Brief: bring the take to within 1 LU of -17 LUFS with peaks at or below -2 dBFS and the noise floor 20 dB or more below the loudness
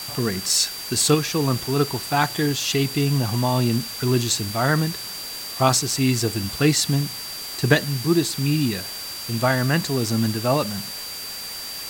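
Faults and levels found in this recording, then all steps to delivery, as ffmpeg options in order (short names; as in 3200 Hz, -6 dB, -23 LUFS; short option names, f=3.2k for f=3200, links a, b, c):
steady tone 4700 Hz; tone level -33 dBFS; noise floor -33 dBFS; noise floor target -42 dBFS; loudness -22.0 LUFS; peak -3.5 dBFS; loudness target -17.0 LUFS
-> -af "bandreject=f=4.7k:w=30"
-af "afftdn=nr=9:nf=-33"
-af "volume=5dB,alimiter=limit=-2dB:level=0:latency=1"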